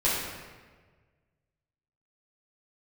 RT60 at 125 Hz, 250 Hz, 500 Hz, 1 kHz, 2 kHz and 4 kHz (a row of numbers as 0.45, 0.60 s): 2.0, 1.5, 1.6, 1.3, 1.3, 1.0 s